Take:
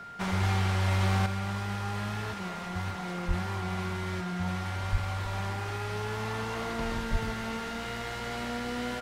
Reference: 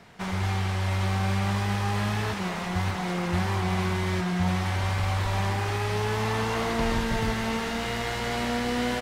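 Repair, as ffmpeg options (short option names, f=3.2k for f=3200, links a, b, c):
-filter_complex "[0:a]bandreject=f=1.4k:w=30,asplit=3[a][b][c];[a]afade=t=out:st=3.27:d=0.02[d];[b]highpass=f=140:w=0.5412,highpass=f=140:w=1.3066,afade=t=in:st=3.27:d=0.02,afade=t=out:st=3.39:d=0.02[e];[c]afade=t=in:st=3.39:d=0.02[f];[d][e][f]amix=inputs=3:normalize=0,asplit=3[g][h][i];[g]afade=t=out:st=4.91:d=0.02[j];[h]highpass=f=140:w=0.5412,highpass=f=140:w=1.3066,afade=t=in:st=4.91:d=0.02,afade=t=out:st=5.03:d=0.02[k];[i]afade=t=in:st=5.03:d=0.02[l];[j][k][l]amix=inputs=3:normalize=0,asplit=3[m][n][o];[m]afade=t=out:st=7.11:d=0.02[p];[n]highpass=f=140:w=0.5412,highpass=f=140:w=1.3066,afade=t=in:st=7.11:d=0.02,afade=t=out:st=7.23:d=0.02[q];[o]afade=t=in:st=7.23:d=0.02[r];[p][q][r]amix=inputs=3:normalize=0,asetnsamples=n=441:p=0,asendcmd='1.26 volume volume 7dB',volume=0dB"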